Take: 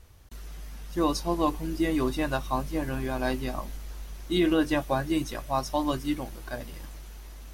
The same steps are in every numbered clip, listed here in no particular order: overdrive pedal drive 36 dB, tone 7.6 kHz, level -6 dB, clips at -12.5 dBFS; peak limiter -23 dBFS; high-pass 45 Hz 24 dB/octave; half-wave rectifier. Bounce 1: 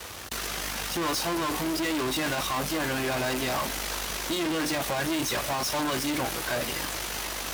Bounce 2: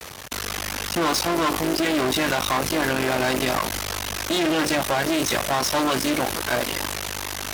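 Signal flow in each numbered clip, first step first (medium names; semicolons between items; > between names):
overdrive pedal > half-wave rectifier > high-pass > peak limiter; half-wave rectifier > peak limiter > overdrive pedal > high-pass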